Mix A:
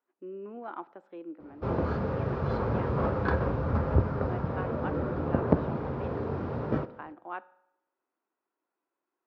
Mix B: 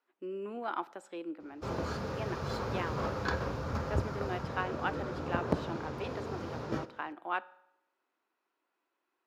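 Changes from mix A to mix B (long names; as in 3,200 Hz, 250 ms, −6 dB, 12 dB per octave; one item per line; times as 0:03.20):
background −8.5 dB
master: remove head-to-tape spacing loss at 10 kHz 42 dB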